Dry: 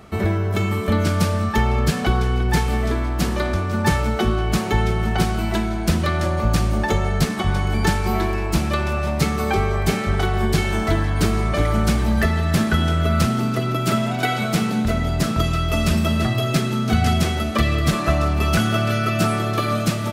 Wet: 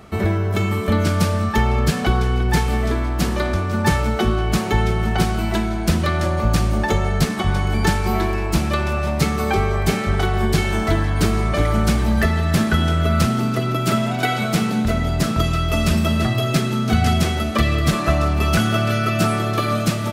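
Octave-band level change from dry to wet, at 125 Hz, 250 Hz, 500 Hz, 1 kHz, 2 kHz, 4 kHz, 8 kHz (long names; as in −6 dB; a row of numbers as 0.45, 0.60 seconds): +1.0, +1.0, +1.0, +1.0, +1.0, +1.0, +1.0 decibels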